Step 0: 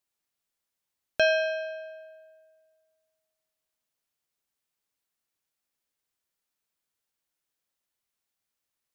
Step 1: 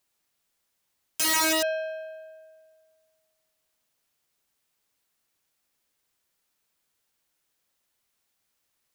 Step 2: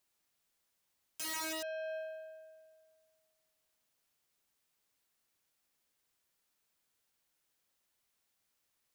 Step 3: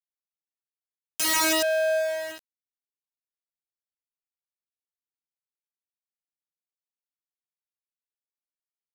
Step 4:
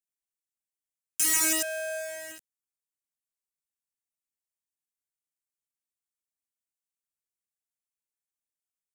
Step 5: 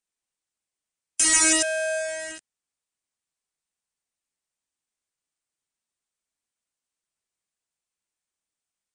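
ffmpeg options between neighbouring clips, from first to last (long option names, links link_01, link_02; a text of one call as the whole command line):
ffmpeg -i in.wav -af "aeval=exprs='(mod(23.7*val(0)+1,2)-1)/23.7':channel_layout=same,volume=8.5dB" out.wav
ffmpeg -i in.wav -af "alimiter=level_in=6.5dB:limit=-24dB:level=0:latency=1,volume=-6.5dB,volume=-4dB" out.wav
ffmpeg -i in.wav -af "aeval=exprs='val(0)*gte(abs(val(0)),0.00355)':channel_layout=same,dynaudnorm=framelen=290:gausssize=7:maxgain=11.5dB,volume=5.5dB" out.wav
ffmpeg -i in.wav -af "equalizer=frequency=125:width_type=o:width=1:gain=-6,equalizer=frequency=500:width_type=o:width=1:gain=-10,equalizer=frequency=1000:width_type=o:width=1:gain=-11,equalizer=frequency=4000:width_type=o:width=1:gain=-11,equalizer=frequency=8000:width_type=o:width=1:gain=7" out.wav
ffmpeg -i in.wav -af "volume=7.5dB" -ar 22050 -c:a libmp3lame -b:a 56k out.mp3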